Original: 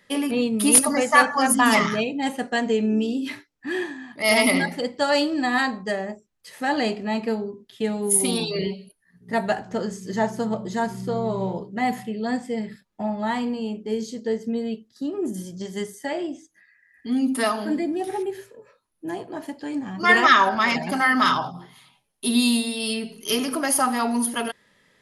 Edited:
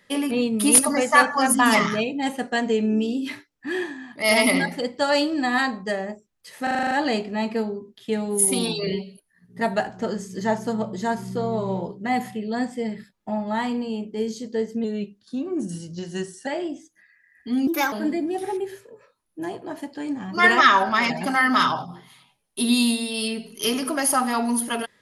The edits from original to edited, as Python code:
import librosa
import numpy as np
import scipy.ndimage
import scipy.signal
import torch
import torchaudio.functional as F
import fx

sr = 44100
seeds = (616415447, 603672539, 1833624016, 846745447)

y = fx.edit(x, sr, fx.stutter(start_s=6.63, slice_s=0.04, count=8),
    fx.speed_span(start_s=14.56, length_s=1.5, speed=0.92),
    fx.speed_span(start_s=17.26, length_s=0.32, speed=1.27), tone=tone)